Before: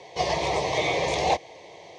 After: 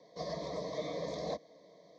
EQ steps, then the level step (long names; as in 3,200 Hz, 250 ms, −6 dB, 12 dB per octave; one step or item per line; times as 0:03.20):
loudspeaker in its box 170–4,300 Hz, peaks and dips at 210 Hz −3 dB, 330 Hz −5 dB, 530 Hz −8 dB, 760 Hz −10 dB, 1,400 Hz −9 dB, 2,400 Hz −8 dB
parametric band 1,900 Hz −13.5 dB 2.3 octaves
phaser with its sweep stopped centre 570 Hz, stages 8
+1.5 dB